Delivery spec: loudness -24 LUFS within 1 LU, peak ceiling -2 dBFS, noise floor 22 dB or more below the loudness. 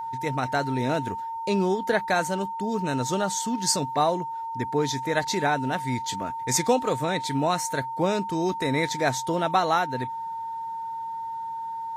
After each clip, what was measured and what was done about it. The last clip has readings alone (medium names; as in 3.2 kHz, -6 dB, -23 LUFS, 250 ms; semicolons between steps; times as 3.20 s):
steady tone 910 Hz; tone level -30 dBFS; loudness -26.5 LUFS; peak level -9.0 dBFS; loudness target -24.0 LUFS
-> band-stop 910 Hz, Q 30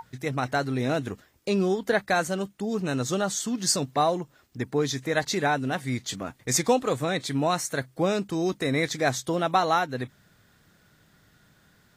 steady tone not found; loudness -26.5 LUFS; peak level -9.5 dBFS; loudness target -24.0 LUFS
-> trim +2.5 dB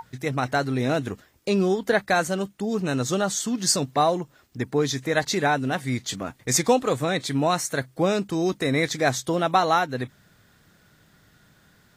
loudness -24.0 LUFS; peak level -7.0 dBFS; noise floor -59 dBFS